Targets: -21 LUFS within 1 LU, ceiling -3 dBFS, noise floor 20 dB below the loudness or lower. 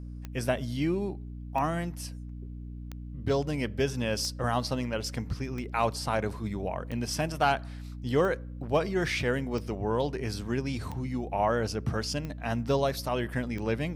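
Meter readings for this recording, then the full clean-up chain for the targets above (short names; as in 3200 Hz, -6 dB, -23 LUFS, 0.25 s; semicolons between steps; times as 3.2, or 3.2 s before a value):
clicks 11; hum 60 Hz; harmonics up to 300 Hz; hum level -37 dBFS; loudness -30.5 LUFS; peak -14.0 dBFS; loudness target -21.0 LUFS
-> de-click; notches 60/120/180/240/300 Hz; gain +9.5 dB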